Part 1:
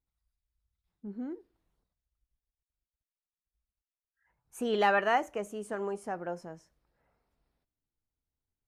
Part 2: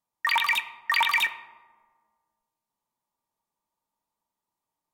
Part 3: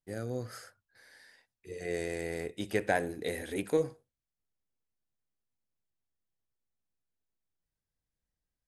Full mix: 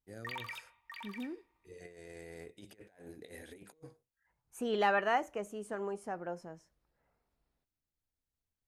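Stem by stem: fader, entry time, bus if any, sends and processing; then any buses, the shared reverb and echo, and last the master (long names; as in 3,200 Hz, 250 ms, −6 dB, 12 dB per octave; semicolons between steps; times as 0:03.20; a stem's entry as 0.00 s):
−3.5 dB, 0.00 s, no send, no processing
−15.5 dB, 0.00 s, no send, automatic ducking −15 dB, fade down 1.50 s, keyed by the first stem
−13.5 dB, 0.00 s, no send, compressor whose output falls as the input rises −37 dBFS, ratio −0.5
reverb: not used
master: no processing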